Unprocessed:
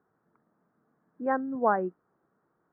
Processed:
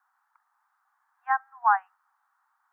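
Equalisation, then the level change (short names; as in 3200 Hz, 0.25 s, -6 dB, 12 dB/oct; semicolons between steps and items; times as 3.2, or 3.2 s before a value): steep high-pass 790 Hz 96 dB/oct; +6.5 dB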